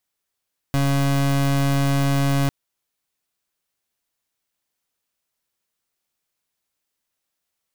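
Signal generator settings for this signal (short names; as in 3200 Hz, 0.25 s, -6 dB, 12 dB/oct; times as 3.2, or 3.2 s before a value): pulse 139 Hz, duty 31% -19 dBFS 1.75 s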